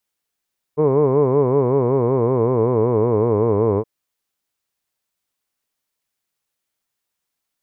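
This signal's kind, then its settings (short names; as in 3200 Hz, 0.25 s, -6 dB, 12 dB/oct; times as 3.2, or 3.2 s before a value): formant-synthesis vowel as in hood, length 3.07 s, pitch 144 Hz, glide -5.5 st, vibrato depth 1.4 st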